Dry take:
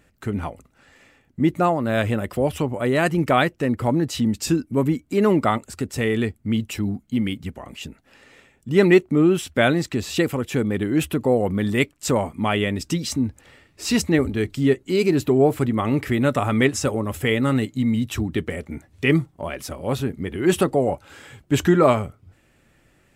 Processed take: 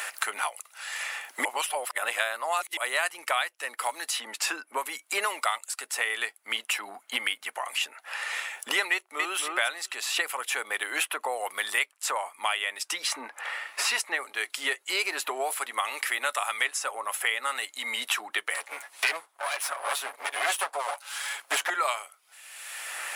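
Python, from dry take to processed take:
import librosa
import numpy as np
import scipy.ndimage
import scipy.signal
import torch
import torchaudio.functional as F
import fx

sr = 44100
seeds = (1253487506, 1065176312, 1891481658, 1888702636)

y = fx.echo_throw(x, sr, start_s=8.92, length_s=0.49, ms=270, feedback_pct=15, wet_db=-7.5)
y = fx.lower_of_two(y, sr, delay_ms=7.1, at=(18.54, 21.7))
y = fx.edit(y, sr, fx.reverse_span(start_s=1.45, length_s=1.32), tone=tone)
y = scipy.signal.sosfilt(scipy.signal.butter(4, 820.0, 'highpass', fs=sr, output='sos'), y)
y = fx.peak_eq(y, sr, hz=10000.0, db=12.5, octaves=0.2)
y = fx.band_squash(y, sr, depth_pct=100)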